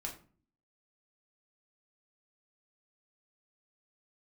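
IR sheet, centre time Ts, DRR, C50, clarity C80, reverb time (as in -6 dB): 19 ms, -0.5 dB, 9.5 dB, 14.5 dB, 0.45 s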